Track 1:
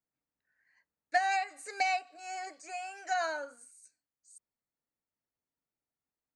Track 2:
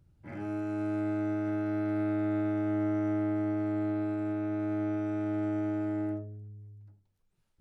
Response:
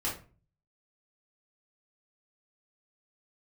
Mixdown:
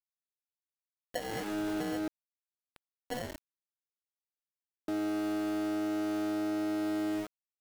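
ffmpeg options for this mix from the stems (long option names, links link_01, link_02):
-filter_complex "[0:a]equalizer=frequency=4600:width_type=o:width=0.5:gain=-3.5,acrusher=samples=36:mix=1:aa=0.000001,volume=-6dB,asplit=2[link_01][link_02];[link_02]volume=-22dB[link_03];[1:a]highpass=260,adelay=1050,volume=2dB,asplit=3[link_04][link_05][link_06];[link_04]atrim=end=2.08,asetpts=PTS-STARTPTS,afade=type=out:start_time=2.076:duration=0.004:curve=hsin[link_07];[link_05]atrim=start=2.08:end=4.88,asetpts=PTS-STARTPTS,volume=0[link_08];[link_06]atrim=start=4.88,asetpts=PTS-STARTPTS,afade=type=in:duration=0.004:curve=hsin[link_09];[link_07][link_08][link_09]concat=n=3:v=0:a=1,asplit=2[link_10][link_11];[link_11]volume=-23dB[link_12];[2:a]atrim=start_sample=2205[link_13];[link_03][link_12]amix=inputs=2:normalize=0[link_14];[link_14][link_13]afir=irnorm=-1:irlink=0[link_15];[link_01][link_10][link_15]amix=inputs=3:normalize=0,aeval=exprs='val(0)*gte(abs(val(0)),0.0141)':channel_layout=same,alimiter=level_in=2dB:limit=-24dB:level=0:latency=1:release=311,volume=-2dB"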